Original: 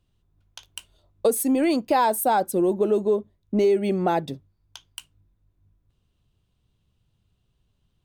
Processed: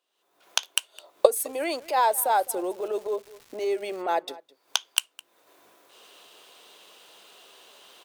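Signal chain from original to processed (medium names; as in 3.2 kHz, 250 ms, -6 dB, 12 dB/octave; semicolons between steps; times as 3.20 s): recorder AGC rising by 59 dB/s; high-pass 460 Hz 24 dB/octave; transient shaper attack -8 dB, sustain -4 dB; 1.39–4.01 s: crackle 450 per s -40 dBFS; echo from a far wall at 36 m, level -20 dB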